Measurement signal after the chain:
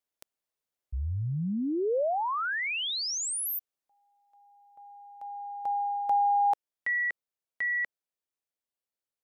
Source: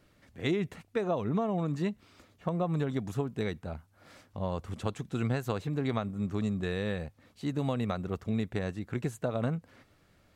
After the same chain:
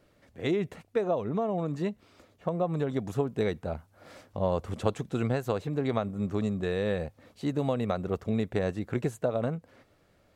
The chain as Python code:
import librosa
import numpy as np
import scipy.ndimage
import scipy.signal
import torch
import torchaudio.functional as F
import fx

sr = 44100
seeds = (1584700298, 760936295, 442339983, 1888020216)

y = fx.peak_eq(x, sr, hz=540.0, db=6.5, octaves=1.3)
y = fx.rider(y, sr, range_db=3, speed_s=0.5)